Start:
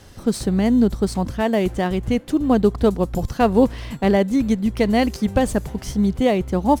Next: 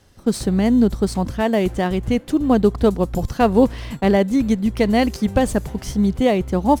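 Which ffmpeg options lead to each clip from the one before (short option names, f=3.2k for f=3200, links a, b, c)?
-af "agate=range=-10dB:threshold=-33dB:ratio=16:detection=peak,volume=1dB"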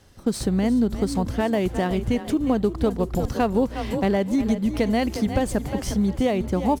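-filter_complex "[0:a]asplit=5[a][b][c][d][e];[b]adelay=356,afreqshift=31,volume=-13dB[f];[c]adelay=712,afreqshift=62,volume=-21.4dB[g];[d]adelay=1068,afreqshift=93,volume=-29.8dB[h];[e]adelay=1424,afreqshift=124,volume=-38.2dB[i];[a][f][g][h][i]amix=inputs=5:normalize=0,acompressor=threshold=-20dB:ratio=2.5"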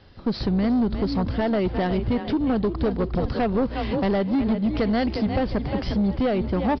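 -af "aresample=11025,asoftclip=type=tanh:threshold=-20dB,aresample=44100,volume=3.5dB" -ar 24000 -c:a libmp3lame -b:a 48k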